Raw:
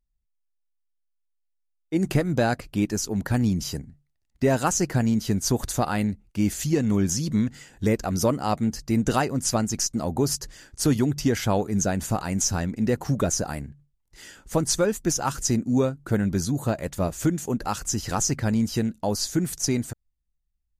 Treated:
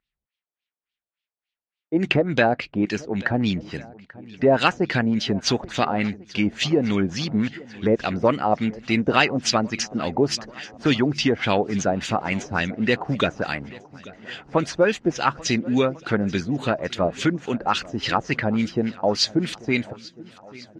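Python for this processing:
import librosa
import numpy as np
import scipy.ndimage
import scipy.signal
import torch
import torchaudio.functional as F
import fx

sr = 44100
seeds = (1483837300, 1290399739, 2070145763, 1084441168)

y = fx.filter_lfo_lowpass(x, sr, shape='sine', hz=3.5, low_hz=630.0, high_hz=3500.0, q=1.8)
y = fx.weighting(y, sr, curve='D')
y = fx.echo_swing(y, sr, ms=1395, ratio=1.5, feedback_pct=38, wet_db=-21.0)
y = F.gain(torch.from_numpy(y), 2.5).numpy()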